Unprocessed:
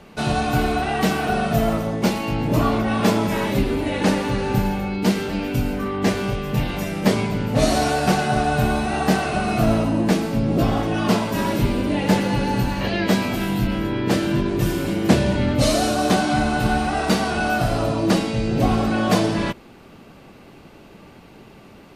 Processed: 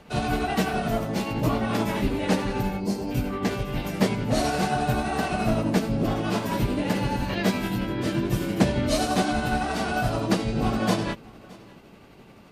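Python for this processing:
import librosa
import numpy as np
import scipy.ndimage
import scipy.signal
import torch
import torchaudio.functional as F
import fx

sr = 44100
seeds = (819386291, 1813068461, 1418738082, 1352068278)

p1 = fx.spec_box(x, sr, start_s=4.91, length_s=0.54, low_hz=1100.0, high_hz=4100.0, gain_db=-12)
p2 = fx.stretch_grains(p1, sr, factor=0.57, grain_ms=172.0)
p3 = p2 + fx.echo_single(p2, sr, ms=618, db=-23.5, dry=0)
y = p3 * librosa.db_to_amplitude(-3.5)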